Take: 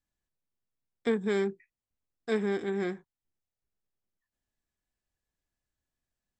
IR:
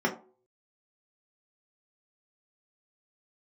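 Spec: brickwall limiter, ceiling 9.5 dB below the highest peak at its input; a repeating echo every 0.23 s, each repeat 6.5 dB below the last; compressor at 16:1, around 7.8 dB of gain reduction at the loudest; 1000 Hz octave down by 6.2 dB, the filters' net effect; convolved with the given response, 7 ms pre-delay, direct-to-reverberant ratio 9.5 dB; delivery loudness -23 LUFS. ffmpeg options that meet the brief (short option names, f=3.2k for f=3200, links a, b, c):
-filter_complex "[0:a]equalizer=f=1k:t=o:g=-9,acompressor=threshold=-31dB:ratio=16,alimiter=level_in=6.5dB:limit=-24dB:level=0:latency=1,volume=-6.5dB,aecho=1:1:230|460|690|920|1150|1380:0.473|0.222|0.105|0.0491|0.0231|0.0109,asplit=2[a][b];[1:a]atrim=start_sample=2205,adelay=7[c];[b][c]afir=irnorm=-1:irlink=0,volume=-21dB[d];[a][d]amix=inputs=2:normalize=0,volume=17.5dB"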